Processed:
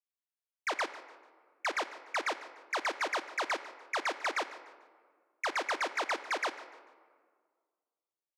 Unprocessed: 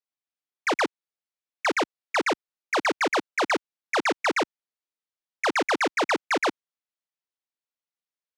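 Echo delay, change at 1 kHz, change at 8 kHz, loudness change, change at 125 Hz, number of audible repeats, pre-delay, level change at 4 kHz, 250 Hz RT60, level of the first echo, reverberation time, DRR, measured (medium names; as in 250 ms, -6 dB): 147 ms, -8.0 dB, -7.5 dB, -8.5 dB, under -25 dB, 2, 3 ms, -8.0 dB, 2.1 s, -17.5 dB, 1.8 s, 10.5 dB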